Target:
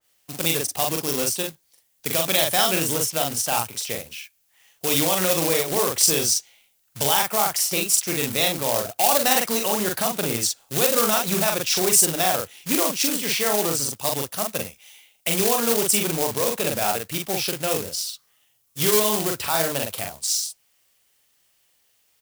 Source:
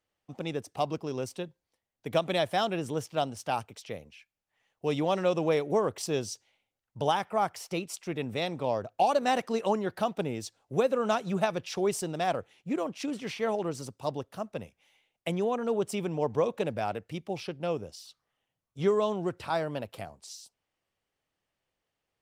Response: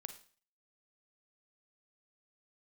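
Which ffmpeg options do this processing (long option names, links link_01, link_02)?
-filter_complex "[0:a]alimiter=limit=-21.5dB:level=0:latency=1:release=52,acontrast=74,asplit=2[link_01][link_02];[link_02]adelay=43,volume=-3dB[link_03];[link_01][link_03]amix=inputs=2:normalize=0,acontrast=50,acrusher=bits=3:mode=log:mix=0:aa=0.000001,crystalizer=i=8.5:c=0,adynamicequalizer=threshold=0.0398:dfrequency=2000:dqfactor=0.7:tfrequency=2000:tqfactor=0.7:attack=5:release=100:ratio=0.375:range=2:mode=cutabove:tftype=highshelf,volume=-9dB"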